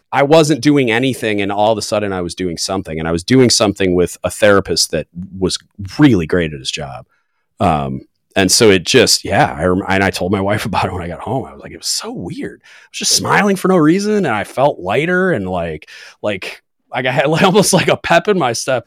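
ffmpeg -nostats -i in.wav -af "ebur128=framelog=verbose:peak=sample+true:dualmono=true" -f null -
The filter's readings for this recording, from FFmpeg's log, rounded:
Integrated loudness:
  I:         -11.1 LUFS
  Threshold: -21.6 LUFS
Loudness range:
  LRA:         4.4 LU
  Threshold: -31.9 LUFS
  LRA low:   -14.4 LUFS
  LRA high:  -10.0 LUFS
Sample peak:
  Peak:       -1.4 dBFS
True peak:
  Peak:       -0.4 dBFS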